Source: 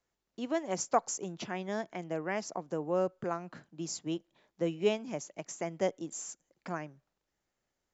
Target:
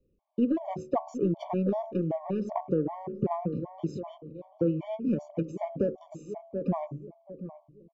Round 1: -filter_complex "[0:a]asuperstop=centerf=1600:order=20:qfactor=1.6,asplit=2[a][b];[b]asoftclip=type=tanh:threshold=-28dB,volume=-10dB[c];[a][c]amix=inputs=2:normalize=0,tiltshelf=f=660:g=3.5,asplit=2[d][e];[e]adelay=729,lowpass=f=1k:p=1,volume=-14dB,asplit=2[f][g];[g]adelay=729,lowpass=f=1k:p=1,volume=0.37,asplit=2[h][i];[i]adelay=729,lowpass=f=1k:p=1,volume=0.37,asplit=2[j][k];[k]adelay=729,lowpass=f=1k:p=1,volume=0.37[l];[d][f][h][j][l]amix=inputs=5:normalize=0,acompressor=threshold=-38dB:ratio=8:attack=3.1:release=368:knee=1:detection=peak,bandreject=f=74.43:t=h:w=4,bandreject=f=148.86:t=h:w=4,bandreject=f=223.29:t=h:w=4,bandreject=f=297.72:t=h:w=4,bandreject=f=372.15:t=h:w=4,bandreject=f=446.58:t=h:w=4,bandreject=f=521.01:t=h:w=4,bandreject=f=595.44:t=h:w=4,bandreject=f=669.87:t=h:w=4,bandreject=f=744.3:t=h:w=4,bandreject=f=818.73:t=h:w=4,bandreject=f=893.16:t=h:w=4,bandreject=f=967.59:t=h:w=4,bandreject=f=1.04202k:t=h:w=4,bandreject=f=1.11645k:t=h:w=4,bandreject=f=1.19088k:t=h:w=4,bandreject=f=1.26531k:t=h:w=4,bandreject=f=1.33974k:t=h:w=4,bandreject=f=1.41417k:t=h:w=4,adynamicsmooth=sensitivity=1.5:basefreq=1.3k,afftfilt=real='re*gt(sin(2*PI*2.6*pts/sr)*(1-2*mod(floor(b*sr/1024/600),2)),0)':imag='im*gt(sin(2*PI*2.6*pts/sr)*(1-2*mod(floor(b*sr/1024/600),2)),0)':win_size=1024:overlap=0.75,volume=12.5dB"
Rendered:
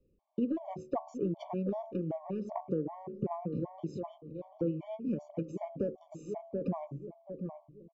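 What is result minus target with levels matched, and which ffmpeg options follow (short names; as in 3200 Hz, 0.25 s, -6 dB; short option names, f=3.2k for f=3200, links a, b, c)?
compressor: peak gain reduction +6.5 dB; soft clip: distortion -7 dB
-filter_complex "[0:a]asuperstop=centerf=1600:order=20:qfactor=1.6,asplit=2[a][b];[b]asoftclip=type=tanh:threshold=-38.5dB,volume=-10dB[c];[a][c]amix=inputs=2:normalize=0,tiltshelf=f=660:g=3.5,asplit=2[d][e];[e]adelay=729,lowpass=f=1k:p=1,volume=-14dB,asplit=2[f][g];[g]adelay=729,lowpass=f=1k:p=1,volume=0.37,asplit=2[h][i];[i]adelay=729,lowpass=f=1k:p=1,volume=0.37,asplit=2[j][k];[k]adelay=729,lowpass=f=1k:p=1,volume=0.37[l];[d][f][h][j][l]amix=inputs=5:normalize=0,acompressor=threshold=-31dB:ratio=8:attack=3.1:release=368:knee=1:detection=peak,bandreject=f=74.43:t=h:w=4,bandreject=f=148.86:t=h:w=4,bandreject=f=223.29:t=h:w=4,bandreject=f=297.72:t=h:w=4,bandreject=f=372.15:t=h:w=4,bandreject=f=446.58:t=h:w=4,bandreject=f=521.01:t=h:w=4,bandreject=f=595.44:t=h:w=4,bandreject=f=669.87:t=h:w=4,bandreject=f=744.3:t=h:w=4,bandreject=f=818.73:t=h:w=4,bandreject=f=893.16:t=h:w=4,bandreject=f=967.59:t=h:w=4,bandreject=f=1.04202k:t=h:w=4,bandreject=f=1.11645k:t=h:w=4,bandreject=f=1.19088k:t=h:w=4,bandreject=f=1.26531k:t=h:w=4,bandreject=f=1.33974k:t=h:w=4,bandreject=f=1.41417k:t=h:w=4,adynamicsmooth=sensitivity=1.5:basefreq=1.3k,afftfilt=real='re*gt(sin(2*PI*2.6*pts/sr)*(1-2*mod(floor(b*sr/1024/600),2)),0)':imag='im*gt(sin(2*PI*2.6*pts/sr)*(1-2*mod(floor(b*sr/1024/600),2)),0)':win_size=1024:overlap=0.75,volume=12.5dB"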